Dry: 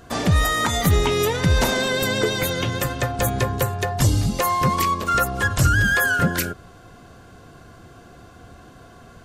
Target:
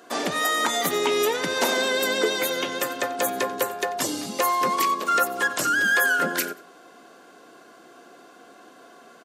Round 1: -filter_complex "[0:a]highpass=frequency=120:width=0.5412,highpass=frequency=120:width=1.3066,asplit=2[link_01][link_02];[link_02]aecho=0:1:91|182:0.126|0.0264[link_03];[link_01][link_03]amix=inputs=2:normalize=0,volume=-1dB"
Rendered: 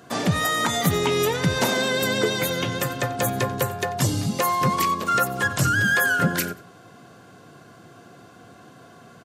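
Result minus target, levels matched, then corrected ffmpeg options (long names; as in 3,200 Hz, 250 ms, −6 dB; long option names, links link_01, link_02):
125 Hz band +18.5 dB
-filter_complex "[0:a]highpass=frequency=270:width=0.5412,highpass=frequency=270:width=1.3066,asplit=2[link_01][link_02];[link_02]aecho=0:1:91|182:0.126|0.0264[link_03];[link_01][link_03]amix=inputs=2:normalize=0,volume=-1dB"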